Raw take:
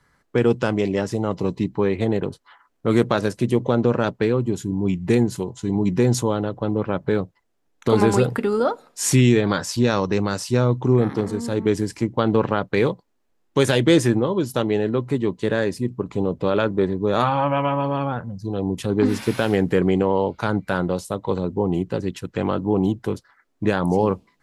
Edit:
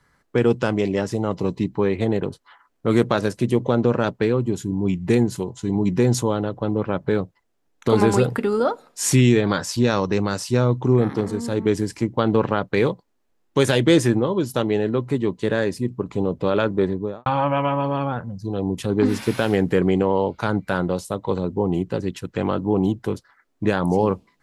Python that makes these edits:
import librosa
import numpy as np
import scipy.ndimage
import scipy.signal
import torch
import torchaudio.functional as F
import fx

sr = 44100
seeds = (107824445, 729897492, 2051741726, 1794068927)

y = fx.studio_fade_out(x, sr, start_s=16.89, length_s=0.37)